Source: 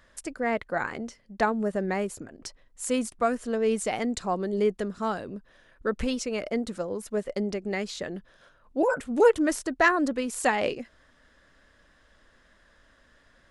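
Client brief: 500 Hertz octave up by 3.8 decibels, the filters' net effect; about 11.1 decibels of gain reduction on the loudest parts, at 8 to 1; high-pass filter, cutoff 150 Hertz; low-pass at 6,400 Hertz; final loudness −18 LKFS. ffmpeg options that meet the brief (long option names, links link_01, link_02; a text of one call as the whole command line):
ffmpeg -i in.wav -af "highpass=150,lowpass=6400,equalizer=frequency=500:width_type=o:gain=4.5,acompressor=threshold=-22dB:ratio=8,volume=11.5dB" out.wav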